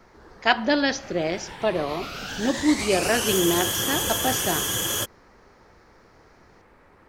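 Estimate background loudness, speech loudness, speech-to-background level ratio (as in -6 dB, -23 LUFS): -25.5 LUFS, -25.0 LUFS, 0.5 dB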